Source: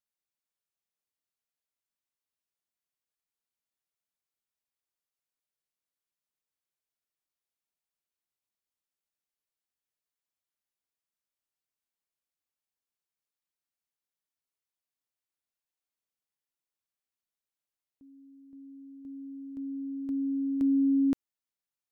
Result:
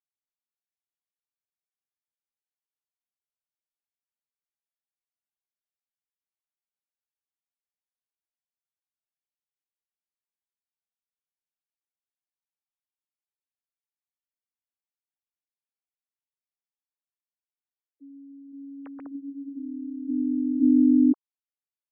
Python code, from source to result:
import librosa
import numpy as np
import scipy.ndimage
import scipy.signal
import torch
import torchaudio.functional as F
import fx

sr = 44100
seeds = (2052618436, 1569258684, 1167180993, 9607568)

y = fx.sine_speech(x, sr)
y = F.gain(torch.from_numpy(y), 6.0).numpy()